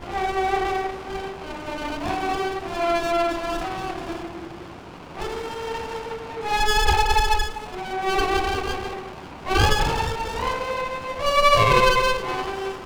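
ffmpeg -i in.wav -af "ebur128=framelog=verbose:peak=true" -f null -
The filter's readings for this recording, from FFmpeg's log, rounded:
Integrated loudness:
  I:         -23.4 LUFS
  Threshold: -33.8 LUFS
Loudness range:
  LRA:         7.4 LU
  Threshold: -44.3 LUFS
  LRA low:   -28.0 LUFS
  LRA high:  -20.6 LUFS
True peak:
  Peak:       -5.6 dBFS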